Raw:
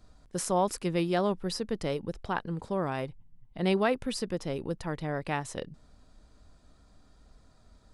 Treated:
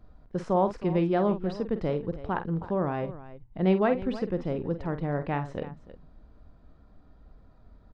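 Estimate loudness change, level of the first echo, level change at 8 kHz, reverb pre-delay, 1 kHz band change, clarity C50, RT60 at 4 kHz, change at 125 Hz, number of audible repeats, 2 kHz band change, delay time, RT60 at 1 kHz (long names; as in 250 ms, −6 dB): +3.0 dB, −10.5 dB, below −20 dB, no reverb audible, +1.5 dB, no reverb audible, no reverb audible, +4.5 dB, 2, −2.0 dB, 48 ms, no reverb audible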